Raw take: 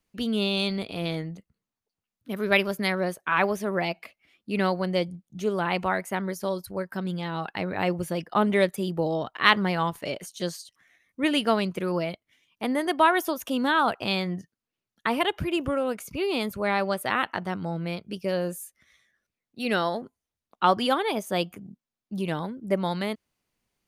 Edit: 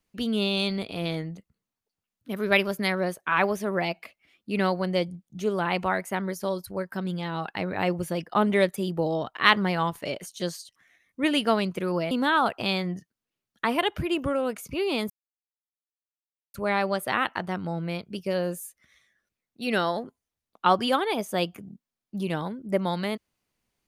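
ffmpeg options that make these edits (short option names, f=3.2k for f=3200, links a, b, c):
-filter_complex "[0:a]asplit=3[a][b][c];[a]atrim=end=12.112[d];[b]atrim=start=13.528:end=16.52,asetpts=PTS-STARTPTS,afade=t=out:st=2.988:d=0.004:c=hsin,apad=pad_dur=1.44[e];[c]atrim=start=16.52,asetpts=PTS-STARTPTS,afade=t=in:d=0.004:c=hsin[f];[e][f]concat=n=2:v=0:a=1[g];[d][g]acrossfade=d=0.004:c1=hsin:c2=hsin"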